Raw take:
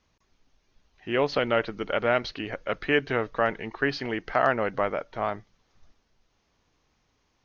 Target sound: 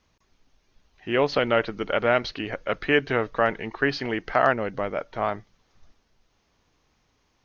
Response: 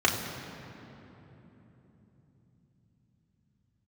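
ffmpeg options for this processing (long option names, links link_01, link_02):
-filter_complex "[0:a]asettb=1/sr,asplit=3[link_01][link_02][link_03];[link_01]atrim=end=4.534[link_04];[link_02]atrim=start=4.53:end=4.96,asetpts=PTS-STARTPTS,afade=type=in:duration=0.004:curve=qsin,afade=type=out:start_time=0.426:duration=0.004:curve=qsin,equalizer=frequency=1200:width_type=o:width=2.6:gain=-7[link_05];[link_03]atrim=start=4.956[link_06];[link_04][link_05]acrossfade=duration=0.004:curve1=hsin:curve2=qsin[link_07];[link_07][link_06]acrossfade=duration=0.004:curve1=qsin:curve2=hsin,volume=2.5dB"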